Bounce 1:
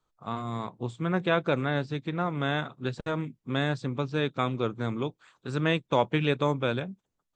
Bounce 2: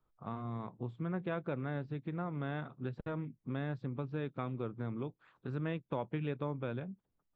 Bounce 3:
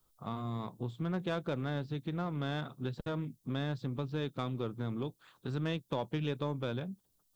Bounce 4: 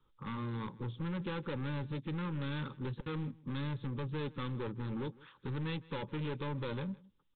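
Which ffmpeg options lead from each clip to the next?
-af "lowpass=2400,lowshelf=f=370:g=6.5,acompressor=threshold=0.0141:ratio=2,volume=0.596"
-filter_complex "[0:a]asplit=2[s0][s1];[s1]asoftclip=type=tanh:threshold=0.0158,volume=0.473[s2];[s0][s2]amix=inputs=2:normalize=0,aexciter=amount=3.9:drive=6.2:freq=3200"
-af "aresample=8000,asoftclip=type=hard:threshold=0.0126,aresample=44100,asuperstop=centerf=680:order=12:qfactor=3.3,aecho=1:1:158:0.0794,volume=1.41"

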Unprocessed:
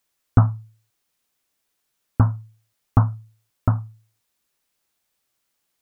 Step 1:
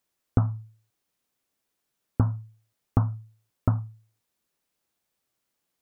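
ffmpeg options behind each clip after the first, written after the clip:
-af "equalizer=f=240:w=0.3:g=6,acompressor=threshold=0.282:ratio=6,volume=0.501"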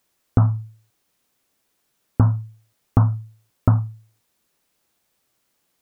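-af "alimiter=level_in=3.35:limit=0.891:release=50:level=0:latency=1,volume=0.891"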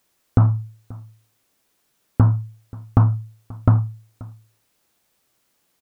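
-filter_complex "[0:a]asplit=2[s0][s1];[s1]asoftclip=type=hard:threshold=0.112,volume=0.355[s2];[s0][s2]amix=inputs=2:normalize=0,aecho=1:1:533:0.0794"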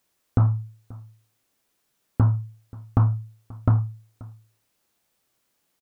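-filter_complex "[0:a]asplit=2[s0][s1];[s1]adelay=26,volume=0.251[s2];[s0][s2]amix=inputs=2:normalize=0,volume=0.562"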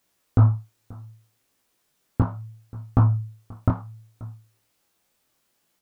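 -af "flanger=delay=15.5:depth=7.2:speed=0.67,volume=1.78"

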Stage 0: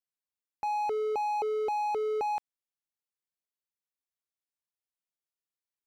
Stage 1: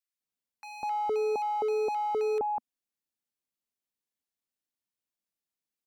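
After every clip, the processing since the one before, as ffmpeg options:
-filter_complex "[0:a]equalizer=f=240:w=2:g=7.5,acrossover=split=1300[s0][s1];[s0]adelay=200[s2];[s2][s1]amix=inputs=2:normalize=0,volume=1.12"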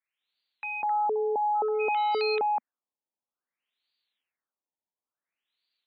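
-af "crystalizer=i=5:c=0,aemphasis=mode=production:type=riaa,afftfilt=real='re*lt(b*sr/1024,980*pow(4800/980,0.5+0.5*sin(2*PI*0.57*pts/sr)))':imag='im*lt(b*sr/1024,980*pow(4800/980,0.5+0.5*sin(2*PI*0.57*pts/sr)))':win_size=1024:overlap=0.75,volume=1.5"

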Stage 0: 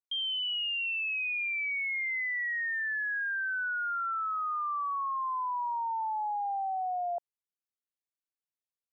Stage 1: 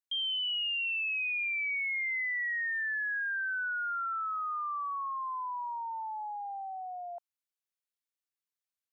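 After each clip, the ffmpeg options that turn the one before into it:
-af "highpass=1100"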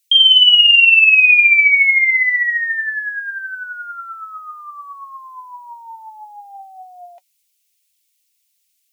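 -af "aexciter=amount=3.7:drive=4.7:freq=2200,highshelf=f=1600:t=q:w=1.5:g=8,flanger=delay=1.1:depth=4.5:regen=52:speed=0.76:shape=triangular,volume=2.37"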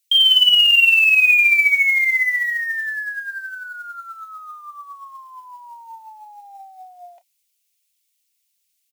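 -filter_complex "[0:a]acrusher=bits=6:mode=log:mix=0:aa=0.000001,asplit=2[s0][s1];[s1]adelay=31,volume=0.224[s2];[s0][s2]amix=inputs=2:normalize=0,volume=0.631"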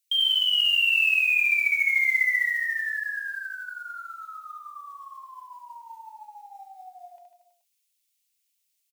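-filter_complex "[0:a]alimiter=limit=0.251:level=0:latency=1:release=170,asplit=2[s0][s1];[s1]aecho=0:1:70|147|231.7|324.9|427.4:0.631|0.398|0.251|0.158|0.1[s2];[s0][s2]amix=inputs=2:normalize=0,volume=0.473"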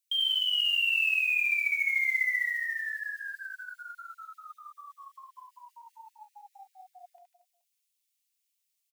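-af "afftfilt=real='re*gte(b*sr/1024,240*pow(1800/240,0.5+0.5*sin(2*PI*5.1*pts/sr)))':imag='im*gte(b*sr/1024,240*pow(1800/240,0.5+0.5*sin(2*PI*5.1*pts/sr)))':win_size=1024:overlap=0.75,volume=0.562"

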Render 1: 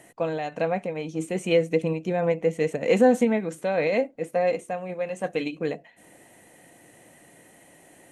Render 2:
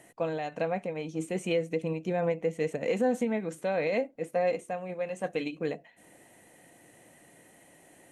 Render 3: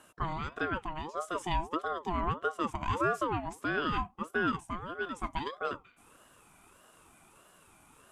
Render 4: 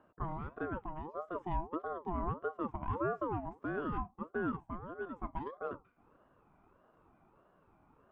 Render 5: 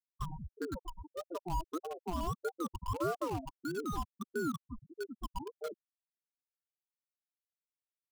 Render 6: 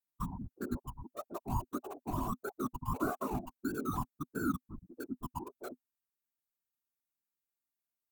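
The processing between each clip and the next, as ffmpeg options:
-af "alimiter=limit=0.2:level=0:latency=1:release=253,volume=0.631"
-af "aeval=exprs='val(0)*sin(2*PI*700*n/s+700*0.35/1.6*sin(2*PI*1.6*n/s))':c=same"
-af "lowpass=1000,volume=0.708"
-filter_complex "[0:a]afftfilt=real='re*gte(hypot(re,im),0.0501)':imag='im*gte(hypot(re,im),0.0501)':win_size=1024:overlap=0.75,acrossover=split=1000[s0][s1];[s1]acrusher=bits=7:mix=0:aa=0.000001[s2];[s0][s2]amix=inputs=2:normalize=0,volume=1.12"
-af "afftfilt=real='hypot(re,im)*cos(2*PI*random(0))':imag='hypot(re,im)*sin(2*PI*random(1))':win_size=512:overlap=0.75,equalizer=f=250:t=o:w=0.33:g=7,equalizer=f=500:t=o:w=0.33:g=-12,equalizer=f=2000:t=o:w=0.33:g=-5,equalizer=f=3150:t=o:w=0.33:g=-11,equalizer=f=5000:t=o:w=0.33:g=-11,equalizer=f=16000:t=o:w=0.33:g=11,volume=2.11"

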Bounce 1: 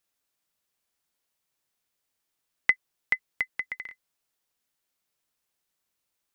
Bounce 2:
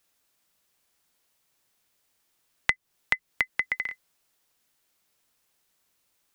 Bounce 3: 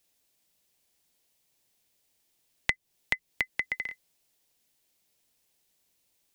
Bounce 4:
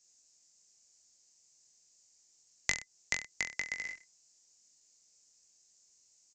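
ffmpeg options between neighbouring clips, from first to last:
-filter_complex "[0:a]acrossover=split=270[s0][s1];[s1]acompressor=threshold=0.0316:ratio=6[s2];[s0][s2]amix=inputs=2:normalize=0,volume=2.66"
-af "equalizer=f=1300:t=o:w=0.97:g=-9.5"
-af "aresample=16000,aresample=44100,aecho=1:1:20|42|66.2|92.82|122.1:0.631|0.398|0.251|0.158|0.1,aexciter=amount=12.1:drive=5:freq=5100,volume=0.447"

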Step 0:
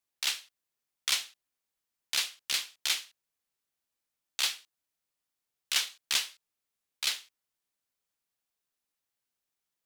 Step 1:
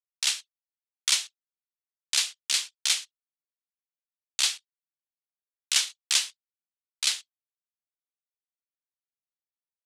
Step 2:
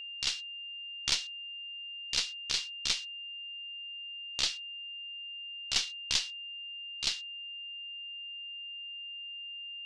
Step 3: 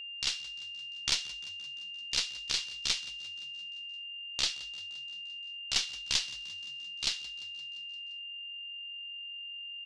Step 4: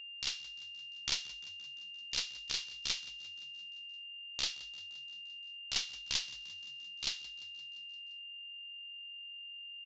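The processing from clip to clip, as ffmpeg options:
-af "lowpass=f=9000:w=0.5412,lowpass=f=9000:w=1.3066,aemphasis=mode=production:type=bsi,anlmdn=0.0398"
-af "aeval=exprs='0.447*(cos(1*acos(clip(val(0)/0.447,-1,1)))-cos(1*PI/2))+0.158*(cos(2*acos(clip(val(0)/0.447,-1,1)))-cos(2*PI/2))+0.0501*(cos(3*acos(clip(val(0)/0.447,-1,1)))-cos(3*PI/2))':c=same,lowpass=f=5100:t=q:w=1.6,aeval=exprs='val(0)+0.02*sin(2*PI*2800*n/s)':c=same,volume=0.501"
-filter_complex "[0:a]asplit=7[s0][s1][s2][s3][s4][s5][s6];[s1]adelay=173,afreqshift=45,volume=0.119[s7];[s2]adelay=346,afreqshift=90,volume=0.075[s8];[s3]adelay=519,afreqshift=135,volume=0.0473[s9];[s4]adelay=692,afreqshift=180,volume=0.0299[s10];[s5]adelay=865,afreqshift=225,volume=0.0186[s11];[s6]adelay=1038,afreqshift=270,volume=0.0117[s12];[s0][s7][s8][s9][s10][s11][s12]amix=inputs=7:normalize=0"
-af "aresample=16000,aresample=44100,volume=0.562"

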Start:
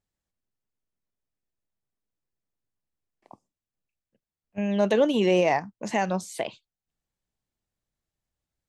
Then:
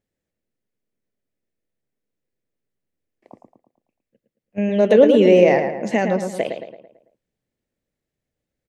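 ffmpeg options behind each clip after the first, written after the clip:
-filter_complex "[0:a]equalizer=f=125:t=o:w=1:g=4,equalizer=f=250:t=o:w=1:g=7,equalizer=f=500:t=o:w=1:g=11,equalizer=f=1000:t=o:w=1:g=-5,equalizer=f=2000:t=o:w=1:g=7,asplit=2[s0][s1];[s1]adelay=111,lowpass=f=2600:p=1,volume=0.501,asplit=2[s2][s3];[s3]adelay=111,lowpass=f=2600:p=1,volume=0.48,asplit=2[s4][s5];[s5]adelay=111,lowpass=f=2600:p=1,volume=0.48,asplit=2[s6][s7];[s7]adelay=111,lowpass=f=2600:p=1,volume=0.48,asplit=2[s8][s9];[s9]adelay=111,lowpass=f=2600:p=1,volume=0.48,asplit=2[s10][s11];[s11]adelay=111,lowpass=f=2600:p=1,volume=0.48[s12];[s2][s4][s6][s8][s10][s12]amix=inputs=6:normalize=0[s13];[s0][s13]amix=inputs=2:normalize=0,volume=0.891"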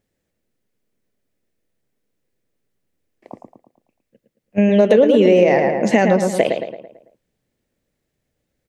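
-af "acompressor=threshold=0.141:ratio=6,volume=2.51"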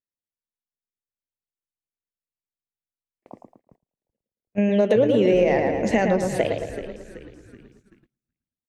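-filter_complex "[0:a]asplit=6[s0][s1][s2][s3][s4][s5];[s1]adelay=379,afreqshift=-83,volume=0.237[s6];[s2]adelay=758,afreqshift=-166,volume=0.11[s7];[s3]adelay=1137,afreqshift=-249,volume=0.0501[s8];[s4]adelay=1516,afreqshift=-332,volume=0.0232[s9];[s5]adelay=1895,afreqshift=-415,volume=0.0106[s10];[s0][s6][s7][s8][s9][s10]amix=inputs=6:normalize=0,agate=range=0.0562:threshold=0.00447:ratio=16:detection=peak,volume=0.501"

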